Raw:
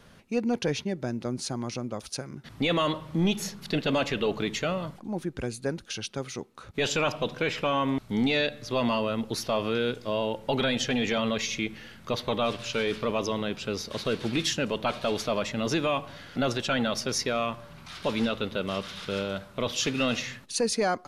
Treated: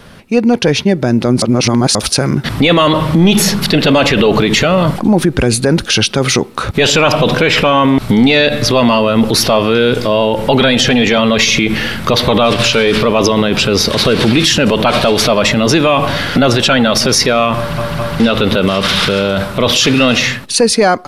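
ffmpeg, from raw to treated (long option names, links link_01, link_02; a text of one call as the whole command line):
ffmpeg -i in.wav -filter_complex "[0:a]asplit=6[link_01][link_02][link_03][link_04][link_05][link_06];[link_01]atrim=end=1.422[link_07];[link_02]atrim=start=1.418:end=1.952,asetpts=PTS-STARTPTS,areverse[link_08];[link_03]atrim=start=1.948:end=17.782[link_09];[link_04]atrim=start=17.568:end=17.782[link_10];[link_05]atrim=start=17.568:end=17.782[link_11];[link_06]atrim=start=18.198[link_12];[link_07][link_08]acrossfade=duration=0.004:curve1=hsin:curve2=hsin[link_13];[link_13][link_09]acrossfade=duration=0.004:curve1=hsin:curve2=hsin[link_14];[link_14][link_10]acrossfade=duration=0.004:curve1=hsin:curve2=hsin[link_15];[link_15][link_11]acrossfade=duration=0.004:curve1=hsin:curve2=hsin[link_16];[link_16][link_12]acrossfade=duration=0.004:curve1=hsin:curve2=hsin,equalizer=frequency=6600:width=4.3:gain=-5,dynaudnorm=framelen=200:gausssize=13:maxgain=12dB,alimiter=level_in=17.5dB:limit=-1dB:release=50:level=0:latency=1,volume=-1dB" out.wav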